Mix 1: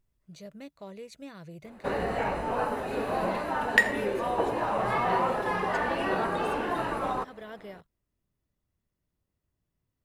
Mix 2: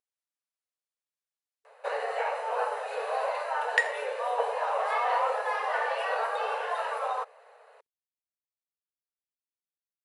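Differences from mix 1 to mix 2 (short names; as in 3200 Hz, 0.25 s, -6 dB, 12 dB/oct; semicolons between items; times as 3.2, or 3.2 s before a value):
speech: muted; second sound -4.0 dB; master: add brick-wall FIR band-pass 430–11000 Hz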